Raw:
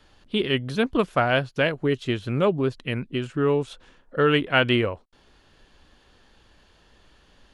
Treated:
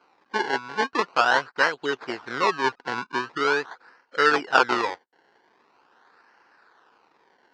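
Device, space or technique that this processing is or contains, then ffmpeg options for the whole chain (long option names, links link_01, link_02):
circuit-bent sampling toy: -filter_complex "[0:a]asettb=1/sr,asplit=3[link_01][link_02][link_03];[link_01]atrim=end=2.644[link_04];[link_02]atrim=start=2.64:end=3.38,asetpts=PTS-STARTPTS,afade=type=in:duration=0.004:curve=qsin,afade=type=out:start_time=0.736:duration=0.004:curve=qsin,lowshelf=frequency=310:gain=6[link_05];[link_03]atrim=start=3.376[link_06];[link_04][link_05]acrossfade=duration=0.004:curve1=hsin:curve2=qsin[link_07];[link_07][link_06]acrossfade=duration=0.004:curve1=qsin:curve2=hsin,acrusher=samples=24:mix=1:aa=0.000001:lfo=1:lforange=24:lforate=0.43,highpass=560,equalizer=frequency=610:width_type=q:width=4:gain=-9,equalizer=frequency=950:width_type=q:width=4:gain=3,equalizer=frequency=1500:width_type=q:width=4:gain=6,equalizer=frequency=2200:width_type=q:width=4:gain=-4,equalizer=frequency=3400:width_type=q:width=4:gain=-7,lowpass=frequency=4700:width=0.5412,lowpass=frequency=4700:width=1.3066,volume=3.5dB"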